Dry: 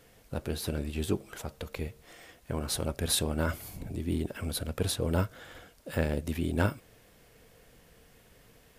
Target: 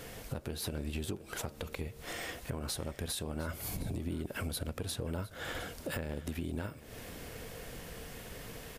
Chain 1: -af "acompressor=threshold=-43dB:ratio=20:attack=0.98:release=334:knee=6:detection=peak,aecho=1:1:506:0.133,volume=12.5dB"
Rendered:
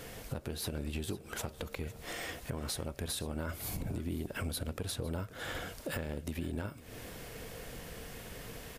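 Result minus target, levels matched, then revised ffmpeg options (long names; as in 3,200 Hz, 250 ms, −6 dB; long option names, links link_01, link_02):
echo 203 ms early
-af "acompressor=threshold=-43dB:ratio=20:attack=0.98:release=334:knee=6:detection=peak,aecho=1:1:709:0.133,volume=12.5dB"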